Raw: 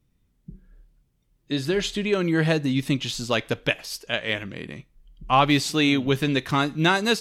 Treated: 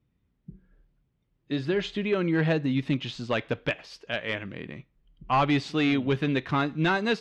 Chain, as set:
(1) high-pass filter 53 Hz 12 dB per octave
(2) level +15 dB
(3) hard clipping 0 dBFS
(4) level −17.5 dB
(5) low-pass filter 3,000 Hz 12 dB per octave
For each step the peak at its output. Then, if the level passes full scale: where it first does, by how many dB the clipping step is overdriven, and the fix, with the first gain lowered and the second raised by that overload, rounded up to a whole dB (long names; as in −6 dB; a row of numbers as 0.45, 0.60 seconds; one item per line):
−6.0, +9.0, 0.0, −17.5, −17.0 dBFS
step 2, 9.0 dB
step 2 +6 dB, step 4 −8.5 dB